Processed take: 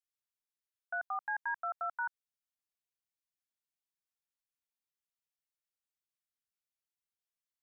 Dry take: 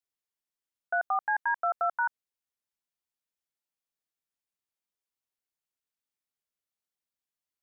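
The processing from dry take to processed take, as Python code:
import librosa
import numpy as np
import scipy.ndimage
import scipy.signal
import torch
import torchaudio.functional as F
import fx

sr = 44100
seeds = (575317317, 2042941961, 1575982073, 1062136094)

y = fx.peak_eq(x, sr, hz=420.0, db=-14.0, octaves=1.3)
y = y * librosa.db_to_amplitude(-5.5)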